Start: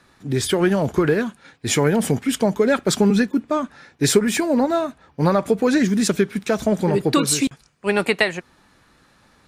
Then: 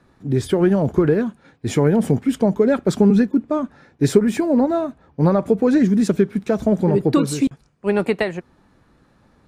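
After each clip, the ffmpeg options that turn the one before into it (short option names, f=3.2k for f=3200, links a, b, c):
-af "tiltshelf=f=1.1k:g=7,volume=-3.5dB"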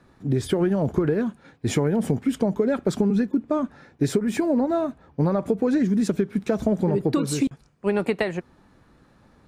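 -af "acompressor=threshold=-18dB:ratio=6"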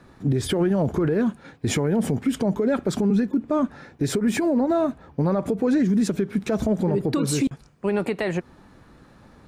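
-af "alimiter=limit=-19.5dB:level=0:latency=1:release=95,volume=5.5dB"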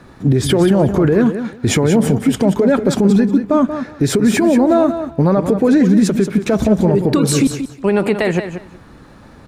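-af "aecho=1:1:183|366:0.335|0.0569,volume=8.5dB"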